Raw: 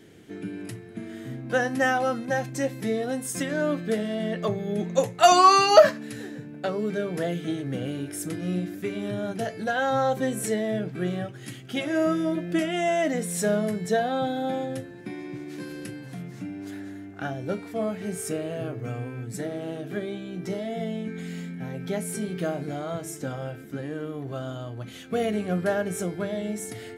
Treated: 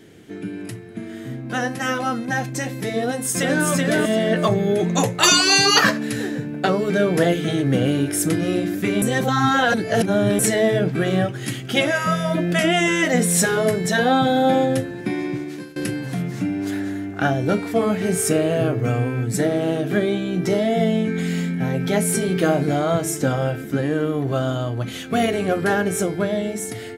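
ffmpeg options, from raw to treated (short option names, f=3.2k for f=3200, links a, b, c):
-filter_complex "[0:a]asplit=2[a][b];[b]afade=t=in:st=3.04:d=0.01,afade=t=out:st=3.67:d=0.01,aecho=0:1:380|760|1140|1520:0.707946|0.176986|0.0442466|0.0110617[c];[a][c]amix=inputs=2:normalize=0,asplit=4[d][e][f][g];[d]atrim=end=9.022[h];[e]atrim=start=9.018:end=10.392,asetpts=PTS-STARTPTS,areverse[i];[f]atrim=start=10.388:end=15.76,asetpts=PTS-STARTPTS,afade=t=out:st=4.862:d=0.51:silence=0.0749894[j];[g]atrim=start=15.76,asetpts=PTS-STARTPTS,afade=t=in:d=0.004:c=hsin:silence=0.0749894[k];[h][i]acrossfade=d=0.004:c1=hsin:c2=hsin[l];[j][k]concat=n=2:v=0:a=1[m];[l][m]acrossfade=d=0.004:c1=hsin:c2=hsin,afftfilt=real='re*lt(hypot(re,im),0.398)':imag='im*lt(hypot(re,im),0.398)':win_size=1024:overlap=0.75,dynaudnorm=f=390:g=17:m=7.5dB,volume=4.5dB"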